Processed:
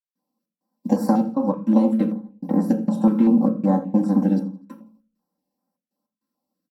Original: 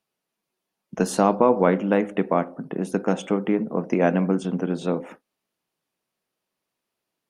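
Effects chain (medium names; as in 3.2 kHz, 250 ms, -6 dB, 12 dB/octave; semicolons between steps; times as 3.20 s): formants flattened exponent 0.6; hum notches 50/100/150/200 Hz; comb 4.1 ms, depth 99%; compression 10:1, threshold -20 dBFS, peak gain reduction 12.5 dB; trance gate ".xx.xxxx.x.xxx." 91 bpm -60 dB; feedback delay 91 ms, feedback 44%, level -20 dB; speed mistake 44.1 kHz file played as 48 kHz; high-order bell 4 kHz -10 dB 2.6 oct; reverberation RT60 0.40 s, pre-delay 3 ms, DRR 2.5 dB; step-sequenced notch 5.2 Hz 700–3200 Hz; trim -6 dB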